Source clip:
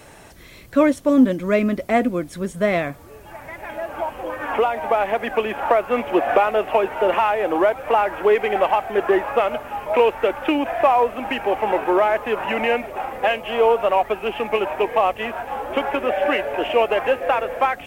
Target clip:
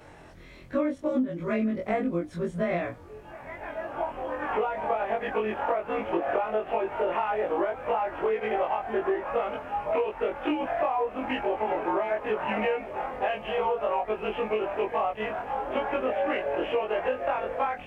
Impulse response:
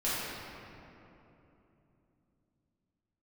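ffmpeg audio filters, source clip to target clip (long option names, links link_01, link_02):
-af "afftfilt=real='re':imag='-im':win_size=2048:overlap=0.75,aemphasis=mode=reproduction:type=75fm,acompressor=threshold=-23dB:ratio=12"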